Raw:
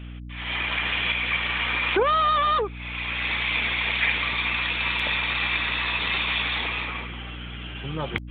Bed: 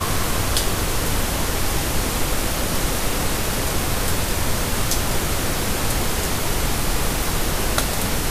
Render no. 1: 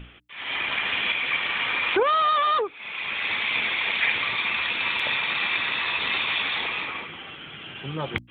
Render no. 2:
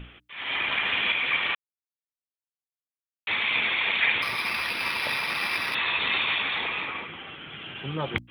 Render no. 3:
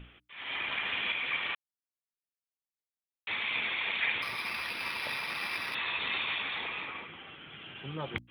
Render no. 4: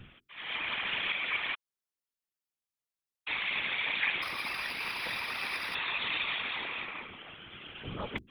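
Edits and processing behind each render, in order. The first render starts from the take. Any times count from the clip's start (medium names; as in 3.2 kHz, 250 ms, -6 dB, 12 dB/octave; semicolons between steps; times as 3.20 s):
hum notches 60/120/180/240/300 Hz
1.55–3.27 s: mute; 4.22–5.75 s: decimation joined by straight lines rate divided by 6×; 6.35–7.51 s: distance through air 100 m
trim -7.5 dB
whisper effect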